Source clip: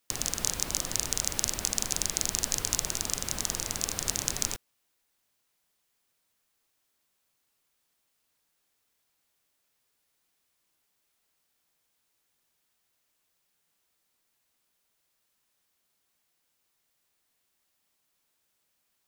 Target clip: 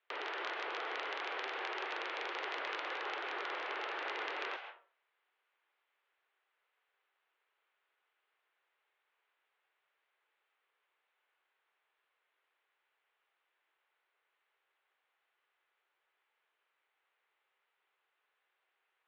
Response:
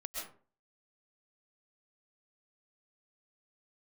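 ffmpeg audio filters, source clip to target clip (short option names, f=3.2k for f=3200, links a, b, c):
-filter_complex "[0:a]asplit=2[a][b];[b]acrossover=split=480 2500:gain=0.224 1 0.1[c][d][e];[c][d][e]amix=inputs=3:normalize=0[f];[1:a]atrim=start_sample=2205,highshelf=f=3.6k:g=12[g];[f][g]afir=irnorm=-1:irlink=0,volume=-2.5dB[h];[a][h]amix=inputs=2:normalize=0,highpass=f=220:t=q:w=0.5412,highpass=f=220:t=q:w=1.307,lowpass=f=3.2k:t=q:w=0.5176,lowpass=f=3.2k:t=q:w=0.7071,lowpass=f=3.2k:t=q:w=1.932,afreqshift=160"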